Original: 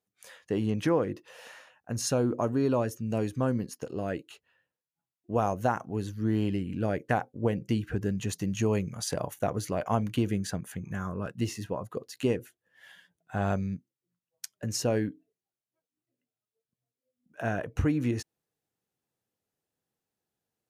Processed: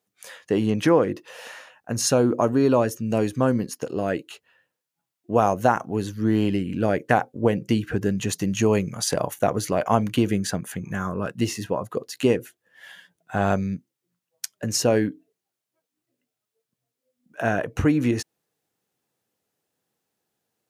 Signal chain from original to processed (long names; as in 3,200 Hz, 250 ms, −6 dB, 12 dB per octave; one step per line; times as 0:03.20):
high-pass filter 160 Hz 6 dB per octave
level +8.5 dB